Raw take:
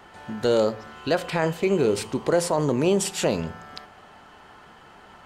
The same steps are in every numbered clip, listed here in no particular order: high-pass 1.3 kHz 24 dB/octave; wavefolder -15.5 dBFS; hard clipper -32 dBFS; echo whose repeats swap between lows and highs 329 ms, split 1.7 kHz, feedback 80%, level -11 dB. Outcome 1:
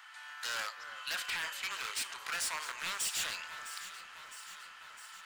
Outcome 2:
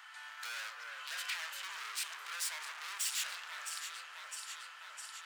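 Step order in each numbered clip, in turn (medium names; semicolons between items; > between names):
wavefolder > high-pass > hard clipper > echo whose repeats swap between lows and highs; wavefolder > echo whose repeats swap between lows and highs > hard clipper > high-pass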